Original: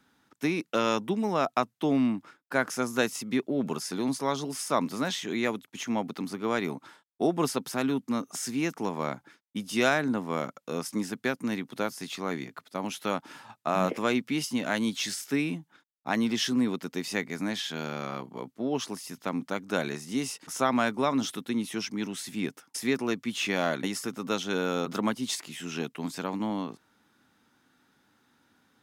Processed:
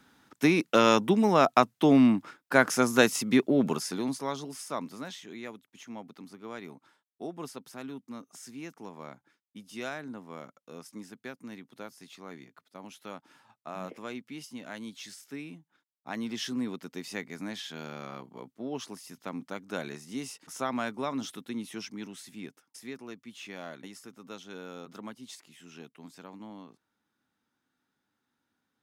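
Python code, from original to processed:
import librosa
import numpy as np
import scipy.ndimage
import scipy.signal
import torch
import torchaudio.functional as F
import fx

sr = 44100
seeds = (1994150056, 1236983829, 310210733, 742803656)

y = fx.gain(x, sr, db=fx.line((3.54, 5.0), (4.13, -3.5), (5.4, -13.0), (15.55, -13.0), (16.46, -6.5), (21.82, -6.5), (22.95, -14.5)))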